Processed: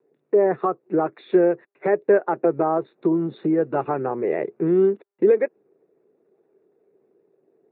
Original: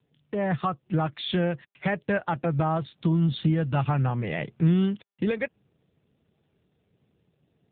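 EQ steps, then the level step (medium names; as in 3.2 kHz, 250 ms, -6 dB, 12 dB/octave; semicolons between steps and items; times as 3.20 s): boxcar filter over 14 samples; resonant high-pass 390 Hz, resonance Q 4.7; +3.5 dB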